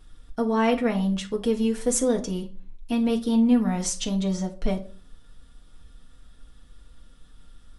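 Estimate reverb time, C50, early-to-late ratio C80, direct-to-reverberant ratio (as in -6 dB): 0.40 s, 15.0 dB, 20.0 dB, 0.5 dB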